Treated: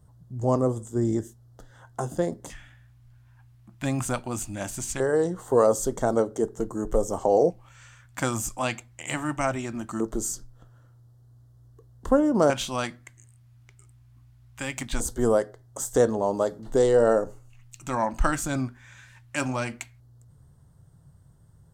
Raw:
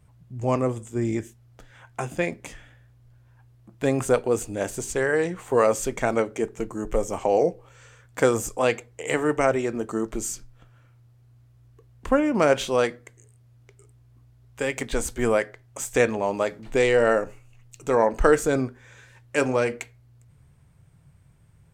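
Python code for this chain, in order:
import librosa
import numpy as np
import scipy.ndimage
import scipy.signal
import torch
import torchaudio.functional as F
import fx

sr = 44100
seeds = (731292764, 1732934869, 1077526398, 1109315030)

y = fx.dynamic_eq(x, sr, hz=1900.0, q=1.5, threshold_db=-41.0, ratio=4.0, max_db=-6)
y = fx.filter_lfo_notch(y, sr, shape='square', hz=0.2, low_hz=450.0, high_hz=2400.0, q=0.8)
y = F.gain(torch.from_numpy(y), 1.0).numpy()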